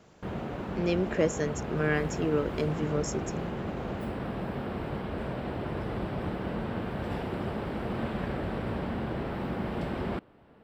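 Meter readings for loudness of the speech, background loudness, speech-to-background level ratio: -31.0 LUFS, -34.5 LUFS, 3.5 dB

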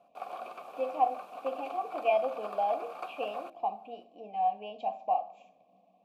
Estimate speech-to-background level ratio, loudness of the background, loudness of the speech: 10.0 dB, -43.0 LUFS, -33.0 LUFS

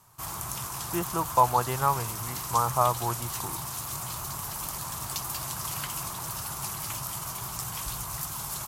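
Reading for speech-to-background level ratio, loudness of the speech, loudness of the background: 5.5 dB, -27.5 LUFS, -33.0 LUFS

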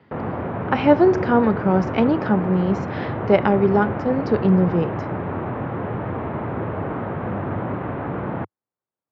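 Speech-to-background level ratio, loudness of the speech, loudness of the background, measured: 8.0 dB, -19.5 LUFS, -27.5 LUFS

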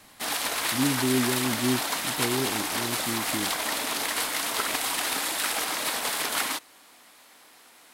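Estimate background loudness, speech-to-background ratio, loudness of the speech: -26.5 LUFS, -4.5 dB, -31.0 LUFS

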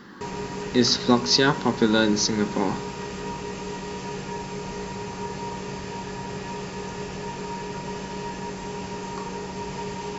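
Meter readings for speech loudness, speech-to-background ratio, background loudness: -21.5 LUFS, 11.5 dB, -33.0 LUFS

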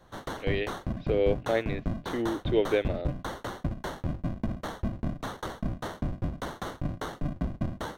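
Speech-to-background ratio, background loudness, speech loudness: 5.0 dB, -35.5 LUFS, -30.5 LUFS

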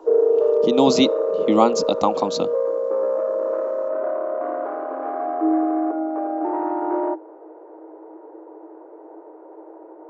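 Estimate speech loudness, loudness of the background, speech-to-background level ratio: -21.5 LUFS, -22.5 LUFS, 1.0 dB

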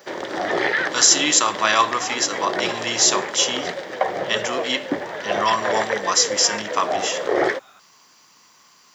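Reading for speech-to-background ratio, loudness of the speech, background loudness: 5.5 dB, -20.0 LUFS, -25.5 LUFS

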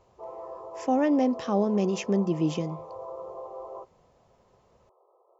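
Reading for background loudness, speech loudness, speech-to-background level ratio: -41.0 LUFS, -26.5 LUFS, 14.5 dB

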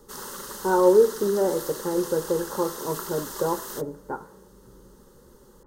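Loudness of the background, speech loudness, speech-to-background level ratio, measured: -35.5 LUFS, -24.5 LUFS, 11.0 dB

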